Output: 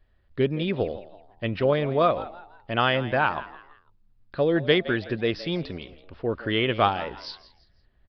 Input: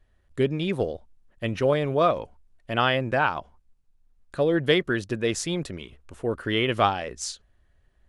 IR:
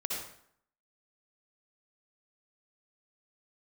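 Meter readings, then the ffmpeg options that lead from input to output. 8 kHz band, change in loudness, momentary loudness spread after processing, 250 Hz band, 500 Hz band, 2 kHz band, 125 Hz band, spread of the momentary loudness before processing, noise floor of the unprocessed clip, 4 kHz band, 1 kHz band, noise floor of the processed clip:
under -25 dB, 0.0 dB, 17 LU, 0.0 dB, 0.0 dB, 0.0 dB, 0.0 dB, 16 LU, -65 dBFS, 0.0 dB, 0.0 dB, -63 dBFS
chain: -filter_complex "[0:a]asplit=4[a][b][c][d];[b]adelay=166,afreqshift=95,volume=-16.5dB[e];[c]adelay=332,afreqshift=190,volume=-25.4dB[f];[d]adelay=498,afreqshift=285,volume=-34.2dB[g];[a][e][f][g]amix=inputs=4:normalize=0,aresample=11025,aresample=44100"

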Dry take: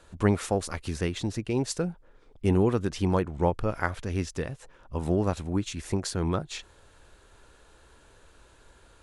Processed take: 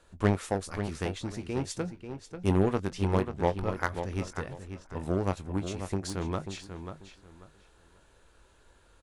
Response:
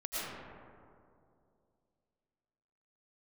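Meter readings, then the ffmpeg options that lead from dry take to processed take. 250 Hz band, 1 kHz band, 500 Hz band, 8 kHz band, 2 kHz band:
-3.5 dB, -1.5 dB, -2.5 dB, -5.5 dB, -1.5 dB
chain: -filter_complex "[0:a]asplit=2[a][b];[b]acrusher=bits=2:mix=0:aa=0.5,volume=-4dB[c];[a][c]amix=inputs=2:normalize=0,asplit=2[d][e];[e]adelay=21,volume=-12dB[f];[d][f]amix=inputs=2:normalize=0,asplit=2[g][h];[h]adelay=540,lowpass=f=4.4k:p=1,volume=-8.5dB,asplit=2[i][j];[j]adelay=540,lowpass=f=4.4k:p=1,volume=0.24,asplit=2[k][l];[l]adelay=540,lowpass=f=4.4k:p=1,volume=0.24[m];[g][i][k][m]amix=inputs=4:normalize=0,volume=-6dB"

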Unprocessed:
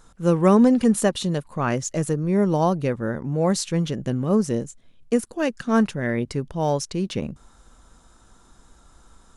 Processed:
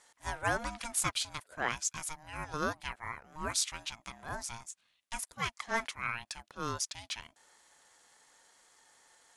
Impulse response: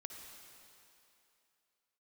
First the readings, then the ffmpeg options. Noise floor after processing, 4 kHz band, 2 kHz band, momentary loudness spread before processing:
-75 dBFS, -3.0 dB, -3.0 dB, 10 LU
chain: -af "highpass=1.2k,aeval=exprs='val(0)*sin(2*PI*460*n/s)':c=same"

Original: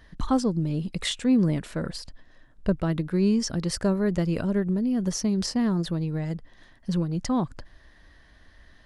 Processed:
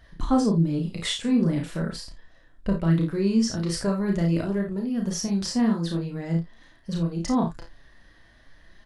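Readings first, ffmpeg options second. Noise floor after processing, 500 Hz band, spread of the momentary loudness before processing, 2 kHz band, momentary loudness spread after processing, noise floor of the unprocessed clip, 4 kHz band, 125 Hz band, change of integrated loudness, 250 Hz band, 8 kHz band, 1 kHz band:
-55 dBFS, 0.0 dB, 10 LU, +0.5 dB, 9 LU, -55 dBFS, +1.0 dB, +1.5 dB, +1.0 dB, +1.0 dB, +0.5 dB, +1.5 dB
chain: -filter_complex "[0:a]flanger=delay=1.3:depth=8.5:regen=40:speed=0.43:shape=triangular,asplit=2[a][b];[b]adelay=30,volume=-6.5dB[c];[a][c]amix=inputs=2:normalize=0,aecho=1:1:36|54:0.531|0.355,volume=2dB"

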